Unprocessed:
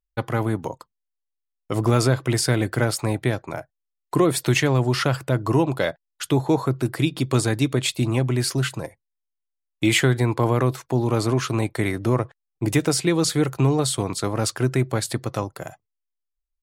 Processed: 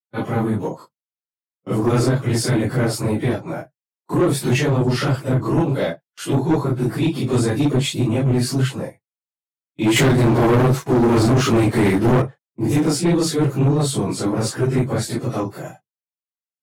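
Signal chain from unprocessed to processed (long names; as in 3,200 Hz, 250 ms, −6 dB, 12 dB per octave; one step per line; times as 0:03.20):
random phases in long frames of 100 ms
noise gate with hold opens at −36 dBFS
high-pass filter 130 Hz 24 dB per octave
low-shelf EQ 440 Hz +10 dB
0:09.96–0:12.22: leveller curve on the samples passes 2
soft clipping −11.5 dBFS, distortion −11 dB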